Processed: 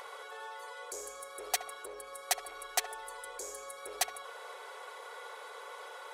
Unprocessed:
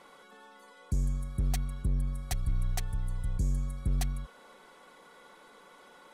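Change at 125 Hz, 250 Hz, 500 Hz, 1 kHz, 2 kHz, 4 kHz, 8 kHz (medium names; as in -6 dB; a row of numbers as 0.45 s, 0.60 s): under -40 dB, -21.5 dB, +8.0 dB, +9.0 dB, +8.5 dB, +8.0 dB, +8.0 dB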